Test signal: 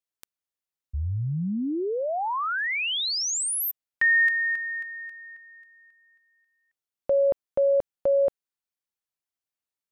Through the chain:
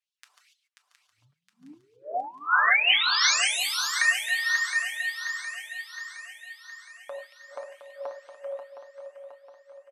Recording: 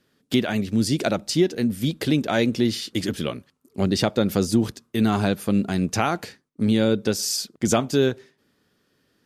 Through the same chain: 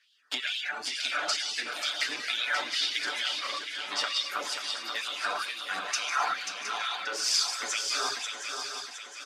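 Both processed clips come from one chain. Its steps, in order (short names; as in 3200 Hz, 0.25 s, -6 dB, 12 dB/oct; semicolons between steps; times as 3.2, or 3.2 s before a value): reverse delay 0.102 s, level -7 dB; compressor 4:1, threshold -24 dBFS; LPF 6800 Hz 12 dB/oct; comb 6.8 ms, depth 49%; non-linear reverb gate 0.31 s flat, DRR 0 dB; LFO high-pass sine 2.2 Hz 950–3300 Hz; reverb removal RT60 1.1 s; HPF 160 Hz 12 dB/oct; bell 460 Hz -2.5 dB 2 oct; swung echo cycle 0.715 s, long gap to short 3:1, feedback 50%, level -7 dB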